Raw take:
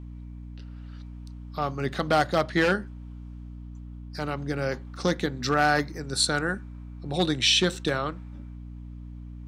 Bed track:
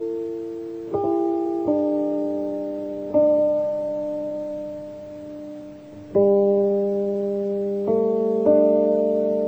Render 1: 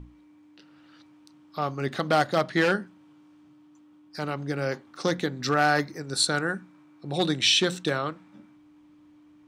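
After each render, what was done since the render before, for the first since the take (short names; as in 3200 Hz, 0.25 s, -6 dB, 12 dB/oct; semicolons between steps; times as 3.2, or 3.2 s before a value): notches 60/120/180/240 Hz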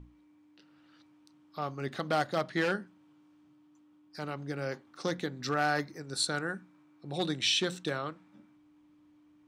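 gain -7 dB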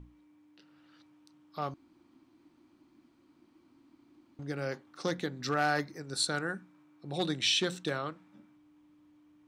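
1.74–4.39 room tone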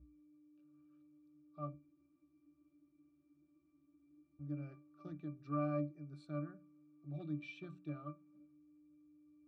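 octave resonator D, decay 0.23 s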